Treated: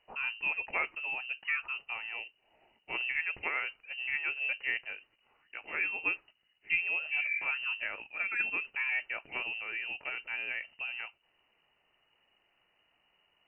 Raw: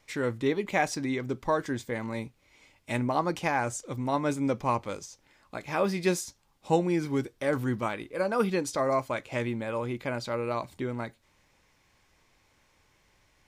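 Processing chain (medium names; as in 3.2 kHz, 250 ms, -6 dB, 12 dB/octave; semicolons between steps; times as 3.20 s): spectral replace 7.15–7.43 s, 380–1300 Hz after; frequency inversion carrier 2.9 kHz; trim -6.5 dB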